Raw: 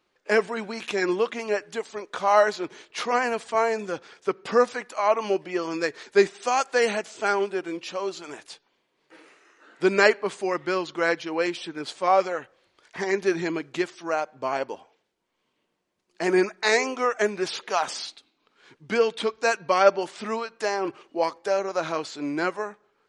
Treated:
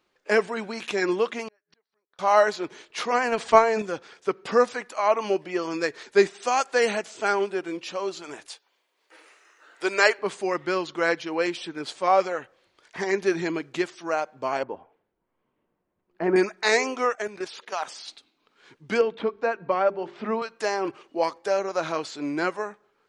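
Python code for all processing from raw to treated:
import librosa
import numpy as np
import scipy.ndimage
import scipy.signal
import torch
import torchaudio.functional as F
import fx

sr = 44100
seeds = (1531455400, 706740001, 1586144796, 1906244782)

y = fx.chain(x, sr, fx.cheby_ripple(hz=5800.0, ripple_db=6),
    fx.gate_flip(shuts_db=-36.0, range_db=-39), at=(1.48, 2.19))
y = fx.chain(y, sr, fx.lowpass(hz=7000.0, slope=12),
    fx.transient(attack_db=12, sustain_db=7), at=(3.28, 3.82))
y = fx.chain(y, sr, fx.highpass(hz=510.0, slope=12),
    fx.high_shelf(hz=9100.0, db=9.5), at=(8.48, 10.19))
y = fx.chain(y, sr, fx.lowpass(hz=1500.0, slope=12),
    fx.low_shelf(hz=110.0, db=10.5), at=(14.63, 16.36))
y = fx.chain(y, sr, fx.low_shelf(hz=160.0, db=-10.0),
    fx.level_steps(step_db=14), at=(17.15, 18.08))
y = fx.chain(y, sr, fx.spacing_loss(db_at_10k=39),
    fx.hum_notches(base_hz=50, count=8),
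    fx.band_squash(depth_pct=70), at=(19.01, 20.42))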